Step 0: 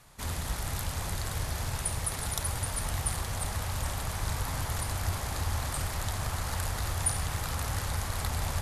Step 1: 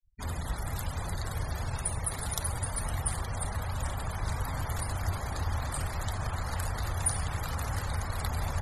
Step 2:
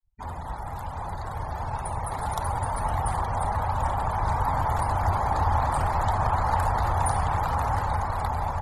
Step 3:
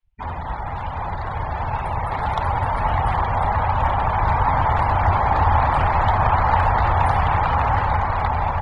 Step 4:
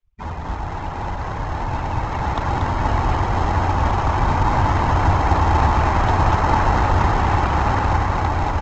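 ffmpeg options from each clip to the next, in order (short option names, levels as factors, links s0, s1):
-af "afftfilt=real='re*gte(hypot(re,im),0.0126)':imag='im*gte(hypot(re,im),0.0126)':win_size=1024:overlap=0.75"
-af "equalizer=f=880:t=o:w=0.84:g=14,dynaudnorm=f=780:g=5:m=2.82,highshelf=f=2800:g=-11,volume=0.75"
-af "lowpass=f=2700:t=q:w=2.2,volume=2"
-filter_complex "[0:a]asplit=2[s0][s1];[s1]acrusher=samples=38:mix=1:aa=0.000001,volume=0.447[s2];[s0][s2]amix=inputs=2:normalize=0,aecho=1:1:235:0.631,aresample=16000,aresample=44100,volume=0.794"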